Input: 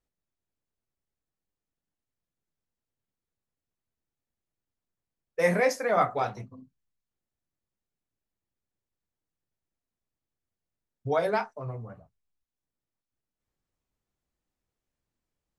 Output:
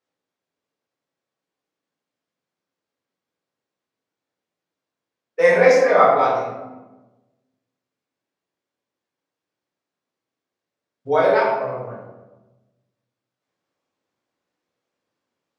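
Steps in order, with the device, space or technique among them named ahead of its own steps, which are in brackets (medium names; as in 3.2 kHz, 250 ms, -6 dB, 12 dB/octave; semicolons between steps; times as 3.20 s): supermarket ceiling speaker (band-pass 280–5600 Hz; reverberation RT60 1.1 s, pre-delay 11 ms, DRR -5.5 dB); trim +4 dB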